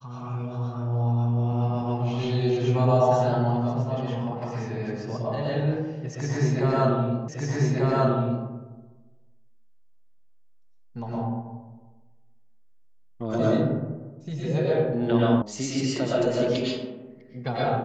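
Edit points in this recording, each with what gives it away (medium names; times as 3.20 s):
7.28 s: repeat of the last 1.19 s
15.42 s: sound stops dead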